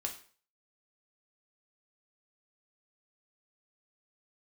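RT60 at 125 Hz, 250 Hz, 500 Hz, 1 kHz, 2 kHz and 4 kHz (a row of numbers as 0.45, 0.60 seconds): 0.45, 0.45, 0.45, 0.45, 0.40, 0.40 seconds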